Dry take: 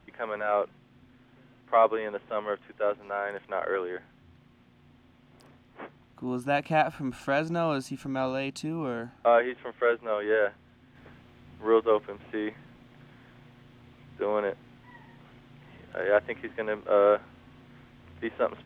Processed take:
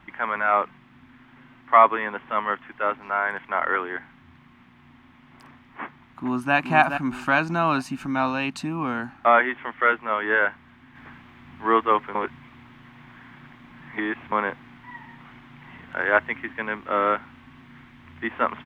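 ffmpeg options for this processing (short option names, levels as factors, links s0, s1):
-filter_complex "[0:a]asplit=2[s0][s1];[s1]afade=t=in:st=5.83:d=0.01,afade=t=out:st=6.55:d=0.01,aecho=0:1:420|840|1260|1680|2100:0.473151|0.189261|0.0757042|0.0302817|0.0121127[s2];[s0][s2]amix=inputs=2:normalize=0,asettb=1/sr,asplit=3[s3][s4][s5];[s3]atrim=end=16.234[s6];[s4]atrim=start=16.23:end=18.31,asetpts=PTS-STARTPTS,afade=t=in:d=0.004:c=qsin,afade=t=out:st=2.076:d=0.004:c=qsin,equalizer=f=910:w=0.51:g=-4[s7];[s5]atrim=start=18.306[s8];[s6][s7]acrossfade=d=0.004:c1=hsin:c2=qsin[s9];[s9][s8]acrossfade=d=0.004:c1=qsin:c2=hsin,asplit=3[s10][s11][s12];[s10]atrim=end=12.152[s13];[s11]atrim=start=12.148:end=14.322,asetpts=PTS-STARTPTS,areverse[s14];[s12]atrim=start=14.318[s15];[s13][s14]acrossfade=d=0.004:c1=hsin:c2=hsin[s16];[s16][s15]acrossfade=d=0.004:c1=hsin:c2=hsin,equalizer=f=250:t=o:w=1:g=6,equalizer=f=500:t=o:w=1:g=-9,equalizer=f=1000:t=o:w=1:g=10,equalizer=f=2000:t=o:w=1:g=8,volume=1.26"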